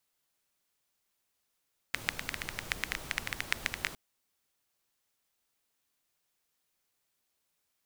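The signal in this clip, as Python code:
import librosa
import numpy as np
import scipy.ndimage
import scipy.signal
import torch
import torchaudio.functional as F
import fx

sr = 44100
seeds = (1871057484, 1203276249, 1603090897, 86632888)

y = fx.rain(sr, seeds[0], length_s=2.01, drops_per_s=11.0, hz=2000.0, bed_db=-6)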